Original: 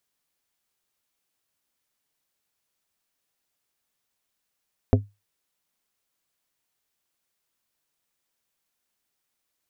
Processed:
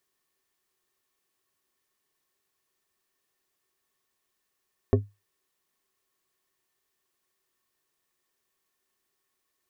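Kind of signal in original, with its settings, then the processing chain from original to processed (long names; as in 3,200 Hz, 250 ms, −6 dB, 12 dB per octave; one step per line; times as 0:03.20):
struck glass plate, lowest mode 102 Hz, modes 5, decay 0.23 s, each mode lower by 2.5 dB, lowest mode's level −11.5 dB
brickwall limiter −11.5 dBFS
hollow resonant body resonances 380/1,100/1,800 Hz, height 13 dB, ringing for 70 ms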